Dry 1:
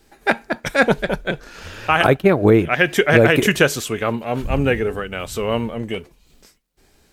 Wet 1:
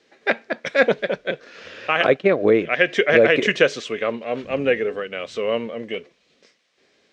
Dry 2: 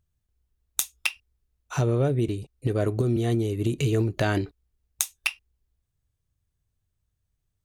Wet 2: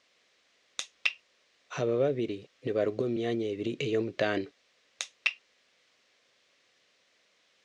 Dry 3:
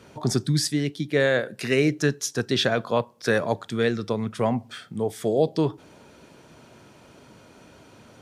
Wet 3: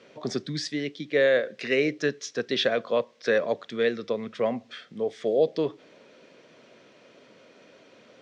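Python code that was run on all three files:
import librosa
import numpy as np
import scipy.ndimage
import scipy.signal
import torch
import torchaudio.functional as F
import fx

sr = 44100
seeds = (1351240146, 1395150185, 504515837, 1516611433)

y = fx.quant_dither(x, sr, seeds[0], bits=10, dither='triangular')
y = fx.cabinet(y, sr, low_hz=270.0, low_slope=12, high_hz=5300.0, hz=(330.0, 520.0, 870.0, 1400.0, 2000.0, 4700.0), db=(-3, 5, -10, -4, 3, -3))
y = F.gain(torch.from_numpy(y), -1.5).numpy()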